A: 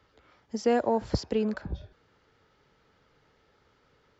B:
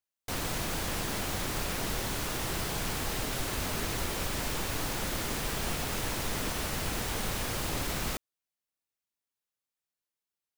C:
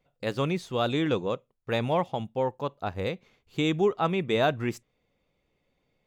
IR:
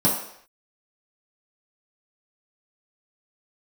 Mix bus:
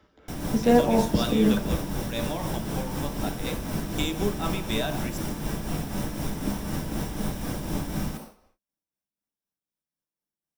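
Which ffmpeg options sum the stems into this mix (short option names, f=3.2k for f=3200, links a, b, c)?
-filter_complex "[0:a]volume=1dB,asplit=2[a][b];[b]volume=-15.5dB[c];[1:a]lowshelf=f=400:g=5,volume=-7.5dB,asplit=2[d][e];[e]volume=-10.5dB[f];[2:a]crystalizer=i=9:c=0,adelay=400,volume=-12.5dB,asplit=2[g][h];[h]volume=-15dB[i];[3:a]atrim=start_sample=2205[j];[c][f][i]amix=inputs=3:normalize=0[k];[k][j]afir=irnorm=-1:irlink=0[l];[a][d][g][l]amix=inputs=4:normalize=0,tremolo=f=4:d=0.46"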